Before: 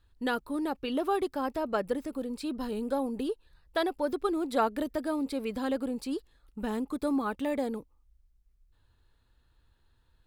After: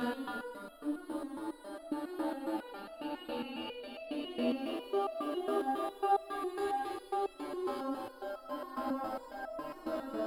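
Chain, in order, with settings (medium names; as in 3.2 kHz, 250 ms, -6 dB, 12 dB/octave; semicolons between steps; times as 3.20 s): Paulstretch 8.3×, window 0.50 s, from 0.39 s; resonator arpeggio 7.3 Hz 81–660 Hz; trim +5.5 dB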